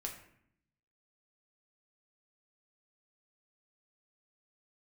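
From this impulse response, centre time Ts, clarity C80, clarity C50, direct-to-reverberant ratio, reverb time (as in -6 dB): 22 ms, 10.5 dB, 7.5 dB, 1.0 dB, 0.65 s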